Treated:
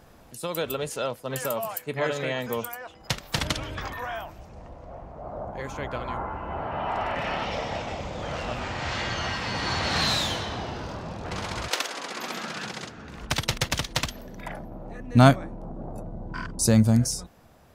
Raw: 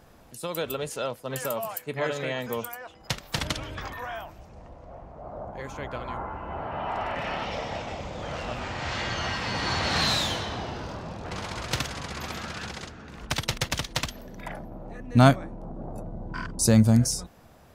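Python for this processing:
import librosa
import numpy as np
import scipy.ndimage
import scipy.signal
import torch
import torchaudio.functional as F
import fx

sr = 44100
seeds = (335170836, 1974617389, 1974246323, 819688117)

p1 = fx.highpass(x, sr, hz=fx.line((11.68, 400.0), (12.95, 98.0)), slope=24, at=(11.68, 12.95), fade=0.02)
p2 = fx.rider(p1, sr, range_db=5, speed_s=2.0)
p3 = p1 + (p2 * librosa.db_to_amplitude(-2.0))
y = p3 * librosa.db_to_amplitude(-5.0)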